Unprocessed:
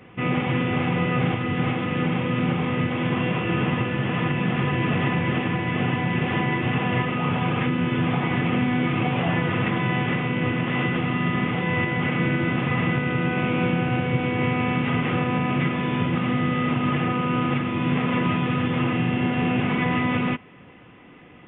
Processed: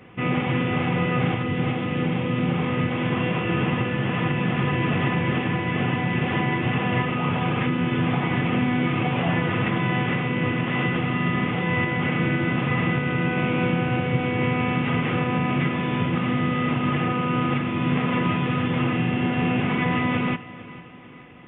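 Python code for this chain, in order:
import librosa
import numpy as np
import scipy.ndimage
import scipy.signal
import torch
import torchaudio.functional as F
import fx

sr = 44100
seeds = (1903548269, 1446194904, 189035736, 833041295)

y = fx.peak_eq(x, sr, hz=1400.0, db=-3.5, octaves=1.6, at=(1.43, 2.54))
y = fx.echo_feedback(y, sr, ms=448, feedback_pct=47, wet_db=-17.5)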